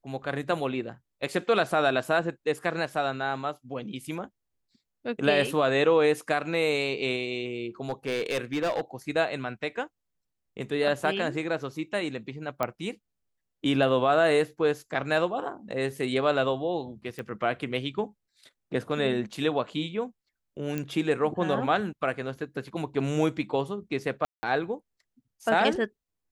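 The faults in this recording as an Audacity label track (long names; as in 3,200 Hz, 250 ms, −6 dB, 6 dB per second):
7.890000	8.810000	clipping −23.5 dBFS
12.630000	12.630000	click −13 dBFS
17.190000	17.190000	click −24 dBFS
20.780000	20.780000	click −17 dBFS
24.250000	24.430000	drop-out 180 ms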